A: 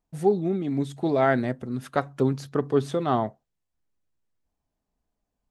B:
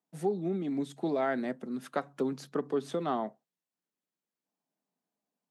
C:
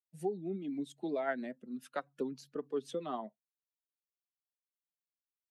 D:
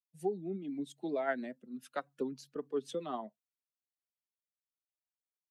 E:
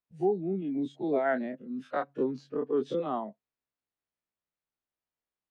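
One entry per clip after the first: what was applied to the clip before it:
steep high-pass 160 Hz 48 dB/octave; compression 2.5:1, threshold -23 dBFS, peak gain reduction 6 dB; trim -4.5 dB
expander on every frequency bin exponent 1.5; dynamic bell 120 Hz, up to -7 dB, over -49 dBFS, Q 0.71; rotary cabinet horn 7.5 Hz
three bands expanded up and down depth 40%
every event in the spectrogram widened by 60 ms; tape spacing loss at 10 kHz 30 dB; trim +5.5 dB

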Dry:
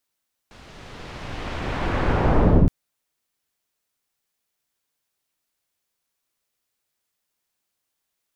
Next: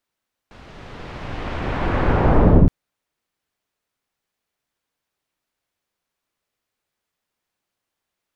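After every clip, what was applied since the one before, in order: treble shelf 4.3 kHz -11.5 dB; trim +3.5 dB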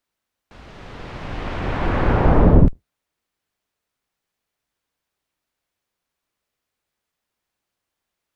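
octave divider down 2 oct, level -5 dB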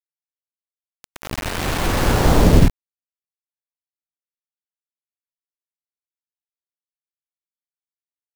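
bit crusher 4-bit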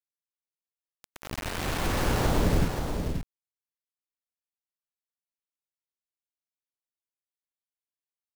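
compression, threshold -12 dBFS, peak gain reduction 7 dB; delay 532 ms -6 dB; trim -8 dB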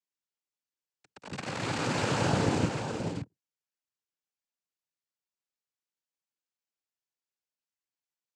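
octave divider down 2 oct, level -3 dB; noise-vocoded speech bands 8

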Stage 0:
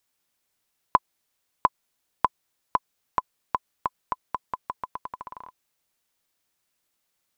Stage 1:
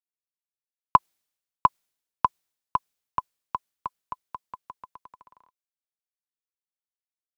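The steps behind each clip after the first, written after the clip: three bands expanded up and down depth 100%; trim -5 dB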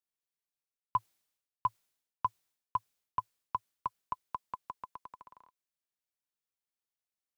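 dynamic bell 110 Hz, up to +4 dB, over -57 dBFS, Q 4.1; reverse; compression, threshold -29 dBFS, peak gain reduction 18 dB; reverse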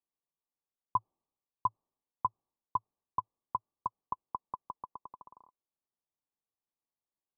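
rippled Chebyshev low-pass 1.2 kHz, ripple 3 dB; trim +3 dB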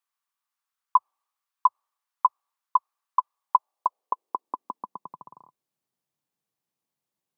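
high-pass sweep 1.2 kHz -> 140 Hz, 3.27–5.23 s; trim +7 dB

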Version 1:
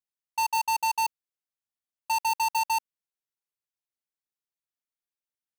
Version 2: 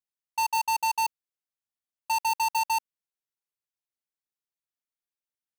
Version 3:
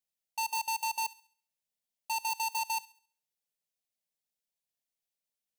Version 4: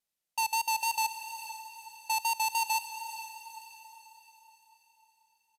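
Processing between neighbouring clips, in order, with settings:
no audible change
peak limiter -30 dBFS, peak gain reduction 6 dB; static phaser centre 330 Hz, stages 6; feedback echo behind a high-pass 68 ms, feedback 39%, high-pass 1.4 kHz, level -18 dB; trim +3.5 dB
resampled via 32 kHz; vibrato 3.6 Hz 32 cents; echo that smears into a reverb 461 ms, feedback 46%, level -11 dB; trim +3.5 dB

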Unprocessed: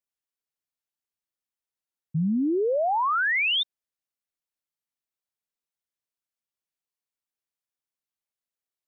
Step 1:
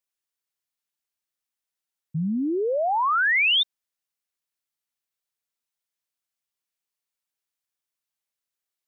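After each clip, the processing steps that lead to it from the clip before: tilt shelf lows -3 dB; trim +1.5 dB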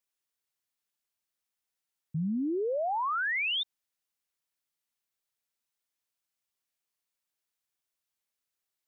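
peak limiter -27 dBFS, peak gain reduction 10.5 dB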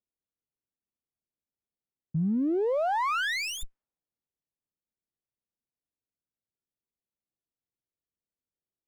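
level-controlled noise filter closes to 400 Hz, open at -29 dBFS; sliding maximum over 9 samples; trim +4 dB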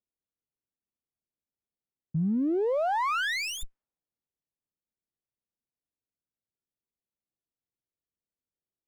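no audible change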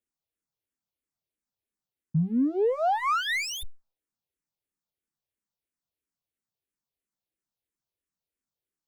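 barber-pole phaser -3 Hz; trim +4.5 dB

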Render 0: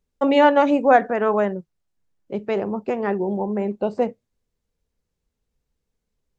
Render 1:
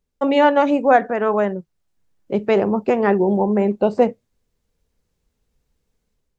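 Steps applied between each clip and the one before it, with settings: level rider gain up to 7 dB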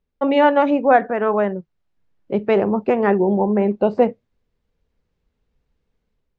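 low-pass 3.5 kHz 12 dB/octave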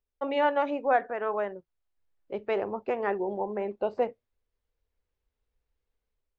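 peaking EQ 180 Hz -13.5 dB 1.3 oct; trim -9 dB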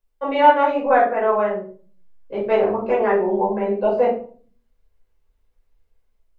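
simulated room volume 360 m³, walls furnished, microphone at 5.2 m

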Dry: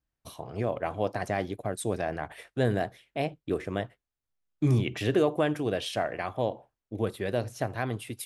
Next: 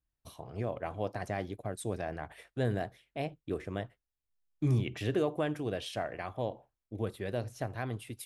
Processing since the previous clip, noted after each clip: bass shelf 82 Hz +9 dB; trim -6.5 dB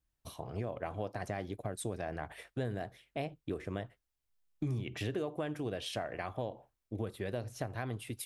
compression 4:1, threshold -37 dBFS, peak gain reduction 11.5 dB; trim +3 dB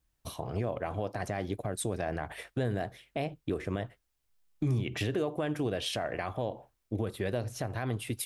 peak limiter -27.5 dBFS, peak gain reduction 5.5 dB; trim +6.5 dB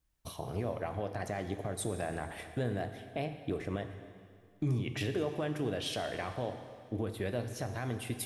plate-style reverb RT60 2.1 s, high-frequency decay 1×, DRR 7.5 dB; trim -3 dB

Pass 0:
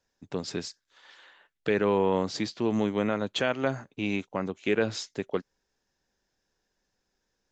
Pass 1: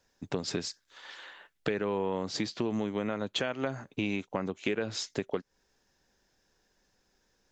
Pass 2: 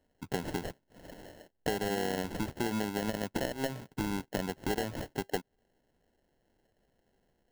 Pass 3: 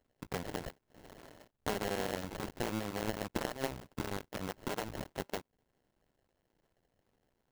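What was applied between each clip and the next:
compression 6:1, threshold -35 dBFS, peak gain reduction 14 dB; trim +6.5 dB
sample-rate reducer 1.2 kHz, jitter 0%; trim -1.5 dB
cycle switcher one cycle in 2, muted; trim -1 dB

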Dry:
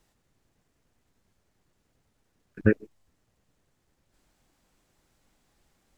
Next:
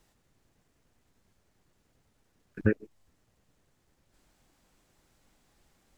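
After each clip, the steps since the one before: compression 1.5:1, threshold -31 dBFS, peak gain reduction 6.5 dB; trim +1.5 dB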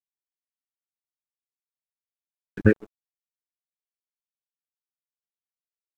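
crossover distortion -53 dBFS; trim +7.5 dB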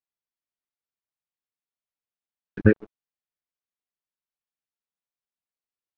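distance through air 160 m; trim +1 dB

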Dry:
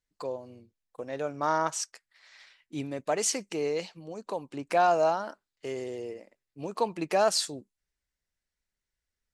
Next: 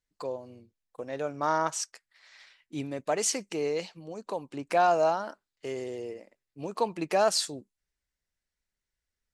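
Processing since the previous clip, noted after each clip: no audible change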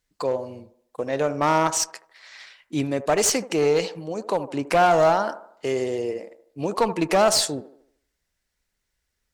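in parallel at +1 dB: peak limiter -21 dBFS, peak gain reduction 8 dB; on the sum: one-sided clip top -22 dBFS; feedback echo behind a band-pass 76 ms, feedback 44%, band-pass 640 Hz, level -12 dB; trim +3.5 dB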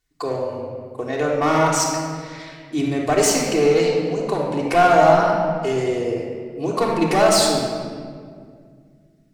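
reverberation RT60 2.0 s, pre-delay 3 ms, DRR -3 dB; trim -1 dB

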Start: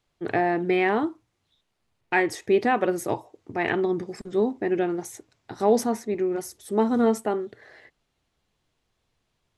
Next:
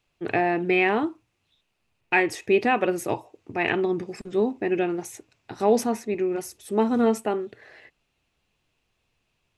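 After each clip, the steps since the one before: peaking EQ 2.6 kHz +10.5 dB 0.28 oct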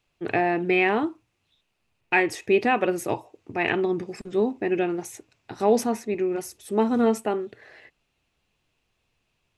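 no audible change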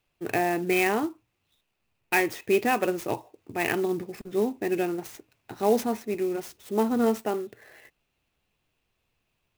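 sampling jitter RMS 0.026 ms; trim -2.5 dB

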